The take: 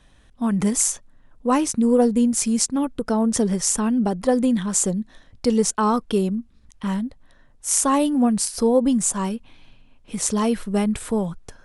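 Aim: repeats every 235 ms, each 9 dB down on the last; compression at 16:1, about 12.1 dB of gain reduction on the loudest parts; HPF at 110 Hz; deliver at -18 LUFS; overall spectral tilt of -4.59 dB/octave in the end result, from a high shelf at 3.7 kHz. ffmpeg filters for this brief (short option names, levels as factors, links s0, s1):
-af "highpass=110,highshelf=f=3700:g=-7,acompressor=threshold=0.0562:ratio=16,aecho=1:1:235|470|705|940:0.355|0.124|0.0435|0.0152,volume=3.98"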